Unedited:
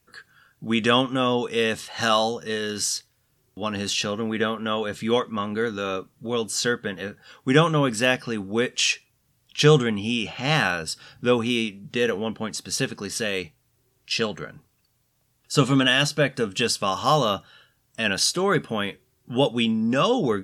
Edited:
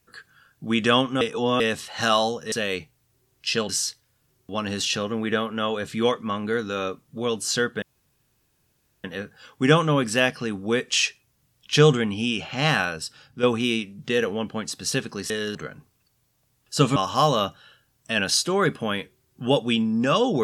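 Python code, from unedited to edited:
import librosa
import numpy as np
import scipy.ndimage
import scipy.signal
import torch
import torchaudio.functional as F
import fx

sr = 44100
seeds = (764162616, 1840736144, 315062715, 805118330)

y = fx.edit(x, sr, fx.reverse_span(start_s=1.21, length_s=0.39),
    fx.swap(start_s=2.52, length_s=0.25, other_s=13.16, other_length_s=1.17),
    fx.insert_room_tone(at_s=6.9, length_s=1.22),
    fx.fade_out_to(start_s=10.55, length_s=0.74, floor_db=-7.0),
    fx.cut(start_s=15.74, length_s=1.11), tone=tone)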